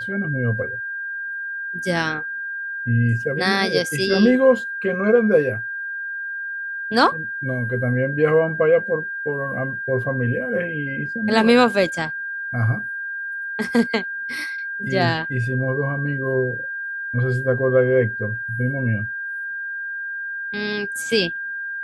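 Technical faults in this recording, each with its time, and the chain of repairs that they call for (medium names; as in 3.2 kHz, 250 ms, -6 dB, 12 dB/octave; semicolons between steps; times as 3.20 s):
whine 1.6 kHz -26 dBFS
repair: band-stop 1.6 kHz, Q 30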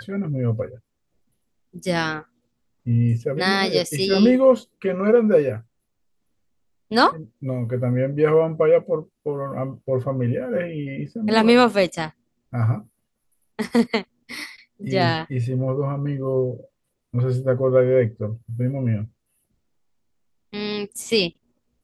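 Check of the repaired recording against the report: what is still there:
nothing left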